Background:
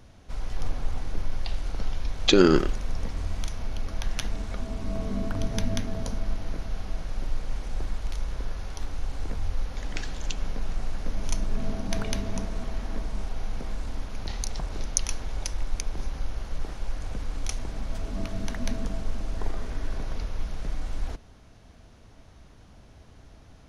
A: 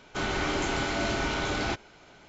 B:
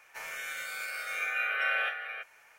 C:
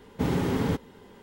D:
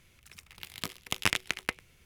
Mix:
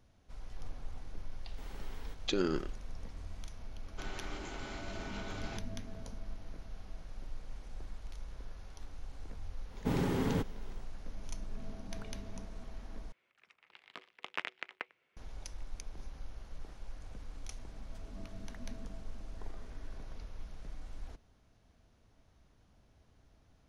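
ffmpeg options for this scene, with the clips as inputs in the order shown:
-filter_complex "[3:a]asplit=2[s0][s1];[0:a]volume=0.188[s2];[s0]highpass=f=1300:p=1[s3];[1:a]alimiter=limit=0.0708:level=0:latency=1:release=71[s4];[4:a]highpass=440,lowpass=2200[s5];[s2]asplit=2[s6][s7];[s6]atrim=end=13.124[s8];[s5]atrim=end=2.05,asetpts=PTS-STARTPTS,volume=0.447[s9];[s7]atrim=start=15.166[s10];[s3]atrim=end=1.22,asetpts=PTS-STARTPTS,volume=0.133,afade=t=in:d=0.004:c=hsin,afade=t=out:st=1.216:d=0.004:c=hsin,adelay=1380[s11];[s4]atrim=end=2.28,asetpts=PTS-STARTPTS,volume=0.224,afade=t=in:d=0.004:c=hsin,afade=t=out:st=2.276:d=0.004:c=hsin,adelay=3830[s12];[s1]atrim=end=1.22,asetpts=PTS-STARTPTS,volume=0.501,afade=t=in:d=0.1,afade=t=out:st=1.12:d=0.1,adelay=9660[s13];[s8][s9]acrossfade=d=0.004:c1=hsin:c2=hsin[s14];[s14][s10]acrossfade=d=0.004:c1=hsin:c2=hsin[s15];[s15][s11][s12][s13]amix=inputs=4:normalize=0"

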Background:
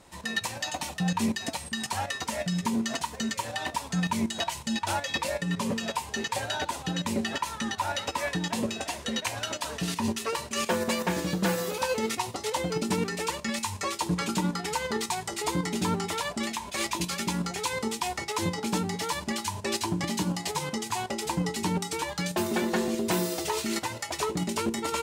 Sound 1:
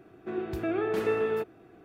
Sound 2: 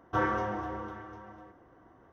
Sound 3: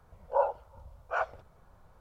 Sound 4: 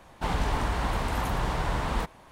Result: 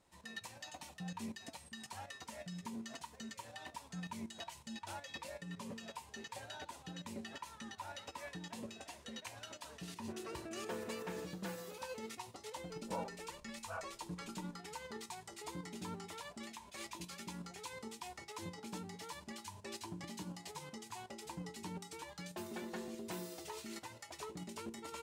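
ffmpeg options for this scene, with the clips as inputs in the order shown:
-filter_complex "[0:a]volume=0.133[s0];[1:a]alimiter=level_in=1.41:limit=0.0631:level=0:latency=1:release=71,volume=0.708[s1];[3:a]aecho=1:1:6.1:0.65[s2];[s1]atrim=end=1.84,asetpts=PTS-STARTPTS,volume=0.211,afade=t=in:d=0.004:c=hsin,afade=t=out:st=1.836:d=0.004:c=hsin,adelay=9820[s3];[s2]atrim=end=2,asetpts=PTS-STARTPTS,volume=0.15,afade=t=in:d=0.004:c=hsin,afade=t=out:st=1.996:d=0.004:c=hsin,adelay=12570[s4];[s0][s3][s4]amix=inputs=3:normalize=0"

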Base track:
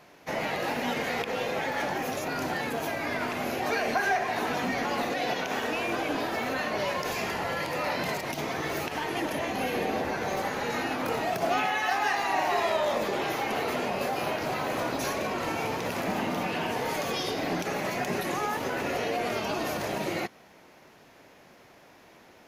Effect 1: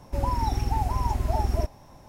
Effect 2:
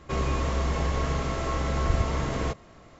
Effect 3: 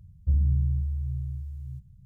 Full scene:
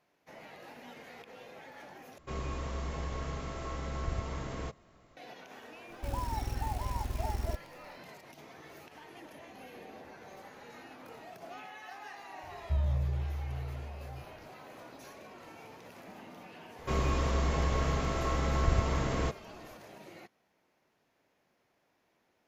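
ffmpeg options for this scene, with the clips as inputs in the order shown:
-filter_complex "[2:a]asplit=2[s0][s1];[0:a]volume=0.1[s2];[1:a]acrusher=bits=7:dc=4:mix=0:aa=0.000001[s3];[s2]asplit=2[s4][s5];[s4]atrim=end=2.184[s6];[s0]atrim=end=2.99,asetpts=PTS-STARTPTS,volume=0.299[s7];[s5]atrim=start=5.166[s8];[s3]atrim=end=2.08,asetpts=PTS-STARTPTS,volume=0.335,afade=t=in:d=0.004:c=hsin,afade=t=out:st=2.076:d=0.004:c=hsin,adelay=5900[s9];[3:a]atrim=end=2.05,asetpts=PTS-STARTPTS,volume=0.447,afade=t=in:d=0.004:c=hsin,afade=t=out:st=2.046:d=0.004:c=hsin,adelay=12430[s10];[s1]atrim=end=2.99,asetpts=PTS-STARTPTS,volume=0.708,afade=t=in:d=0.004:c=hsin,afade=t=out:st=2.986:d=0.004:c=hsin,adelay=16780[s11];[s6][s7]acrossfade=d=0.004:c1=hsin:c2=hsin[s12];[s12][s8]acrossfade=d=0.004:c1=hsin:c2=hsin[s13];[s13][s9][s10][s11]amix=inputs=4:normalize=0"

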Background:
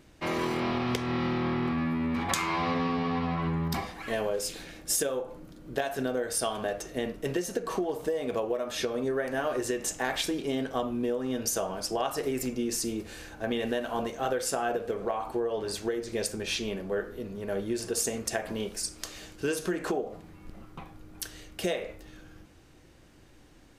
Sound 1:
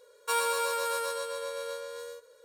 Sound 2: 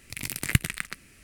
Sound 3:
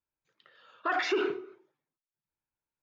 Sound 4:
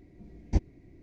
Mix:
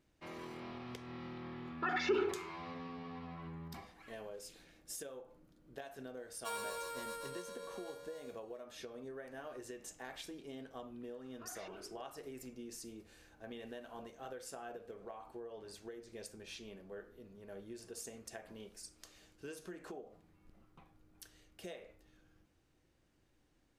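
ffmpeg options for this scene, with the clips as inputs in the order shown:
-filter_complex "[3:a]asplit=2[s0][s1];[0:a]volume=0.126[s2];[s0]aecho=1:1:2.3:0.76[s3];[s1]acompressor=threshold=0.0158:ratio=6:attack=3.2:release=140:knee=1:detection=peak[s4];[s3]atrim=end=2.82,asetpts=PTS-STARTPTS,volume=0.398,afade=t=in:d=0.004:c=hsin,afade=t=out:st=2.816:d=0.004:c=hsin,adelay=970[s5];[1:a]atrim=end=2.44,asetpts=PTS-STARTPTS,volume=0.211,afade=t=in:d=0.004:c=hsin,afade=t=out:st=2.436:d=0.004:c=hsin,adelay=6170[s6];[s4]atrim=end=2.82,asetpts=PTS-STARTPTS,volume=0.178,afade=t=in:d=0.004:c=hsin,afade=t=out:st=2.816:d=0.004:c=hsin,adelay=10560[s7];[s2][s5][s6][s7]amix=inputs=4:normalize=0"

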